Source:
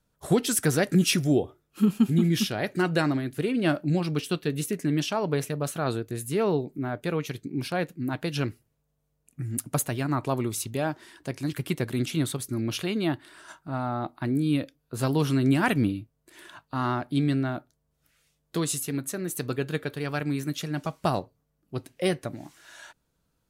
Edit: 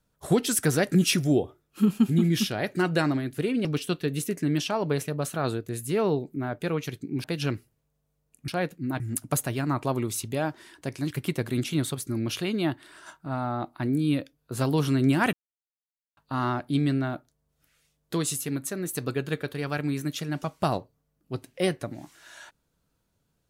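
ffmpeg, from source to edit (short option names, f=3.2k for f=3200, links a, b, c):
-filter_complex "[0:a]asplit=7[a][b][c][d][e][f][g];[a]atrim=end=3.652[h];[b]atrim=start=4.068:end=7.662[i];[c]atrim=start=8.178:end=9.422[j];[d]atrim=start=7.658:end=8.182[k];[e]atrim=start=9.418:end=15.75,asetpts=PTS-STARTPTS,afade=t=out:st=6.328:d=0.004:c=hsin[l];[f]atrim=start=15.75:end=16.59,asetpts=PTS-STARTPTS,volume=0[m];[g]atrim=start=16.59,asetpts=PTS-STARTPTS,afade=t=in:d=0.004:c=hsin[n];[h][i]acrossfade=d=0.004:c1=hsin:c2=hsin[o];[o][j]acrossfade=d=0.004:c1=hsin:c2=hsin[p];[p][k]acrossfade=d=0.004:c1=hsin:c2=hsin[q];[l][m][n]concat=n=3:v=0:a=1[r];[q][r]acrossfade=d=0.004:c1=hsin:c2=hsin"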